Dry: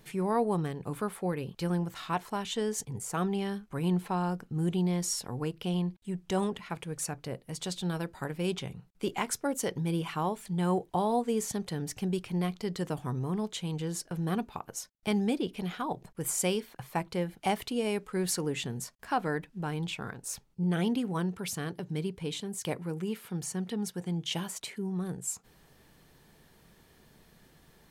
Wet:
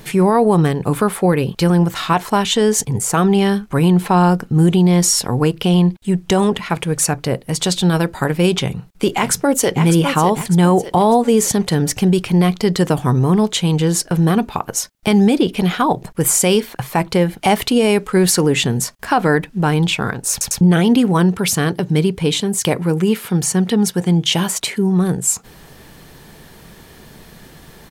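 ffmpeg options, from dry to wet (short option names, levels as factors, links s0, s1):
-filter_complex "[0:a]asplit=2[s0][s1];[s1]afade=t=in:st=8.62:d=0.01,afade=t=out:st=9.81:d=0.01,aecho=0:1:600|1200|1800|2400:0.334965|0.133986|0.0535945|0.0214378[s2];[s0][s2]amix=inputs=2:normalize=0,asplit=4[s3][s4][s5][s6];[s3]atrim=end=20.412[s7];[s4]atrim=start=20.308:end=20.412[s8];[s5]atrim=start=20.308:end=20.412[s9];[s6]atrim=start=20.608[s10];[s7][s8]acrossfade=d=0.004:c1=hsin:c2=hsin[s11];[s11][s9]acrossfade=d=0.004:c1=hsin:c2=hsin[s12];[s12][s10]acrossfade=d=0.004:c1=hsin:c2=hsin,alimiter=level_in=13.3:limit=0.891:release=50:level=0:latency=1,volume=0.631"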